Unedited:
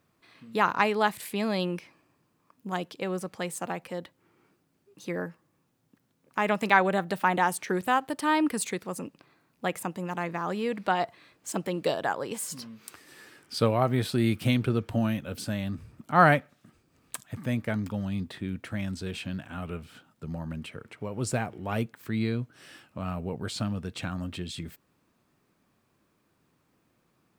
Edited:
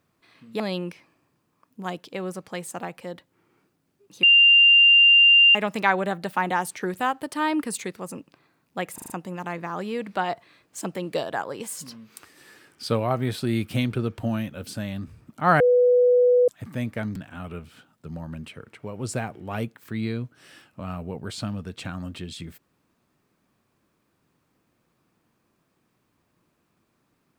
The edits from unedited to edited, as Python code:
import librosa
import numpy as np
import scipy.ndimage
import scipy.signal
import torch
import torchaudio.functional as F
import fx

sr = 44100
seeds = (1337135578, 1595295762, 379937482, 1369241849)

y = fx.edit(x, sr, fx.cut(start_s=0.6, length_s=0.87),
    fx.bleep(start_s=5.1, length_s=1.32, hz=2790.0, db=-11.0),
    fx.stutter(start_s=9.81, slice_s=0.04, count=5),
    fx.bleep(start_s=16.31, length_s=0.88, hz=493.0, db=-14.0),
    fx.cut(start_s=17.87, length_s=1.47), tone=tone)